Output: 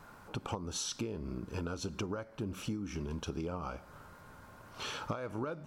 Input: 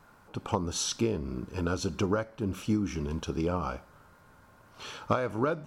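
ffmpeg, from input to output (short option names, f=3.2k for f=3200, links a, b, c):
-af "acompressor=threshold=-39dB:ratio=6,volume=3.5dB"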